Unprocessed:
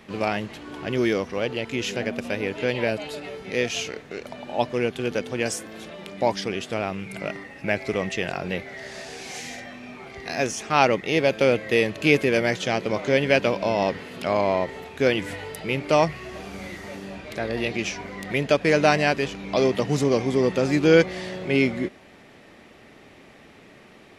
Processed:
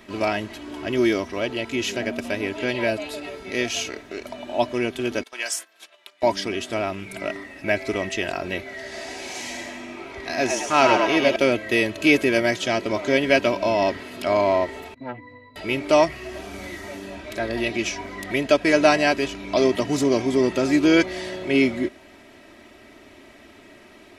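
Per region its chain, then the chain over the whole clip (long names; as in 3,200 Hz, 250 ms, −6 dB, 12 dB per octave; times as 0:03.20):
0:05.23–0:06.23: high-pass filter 990 Hz + noise gate −44 dBFS, range −15 dB
0:08.82–0:11.36: high-shelf EQ 7,500 Hz −5.5 dB + echo with shifted repeats 104 ms, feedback 49%, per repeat +95 Hz, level −4 dB
0:14.94–0:15.56: low-pass filter 5,100 Hz + resonances in every octave B, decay 0.2 s + saturating transformer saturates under 970 Hz
whole clip: high-shelf EQ 8,400 Hz +5 dB; comb filter 3.1 ms, depth 64%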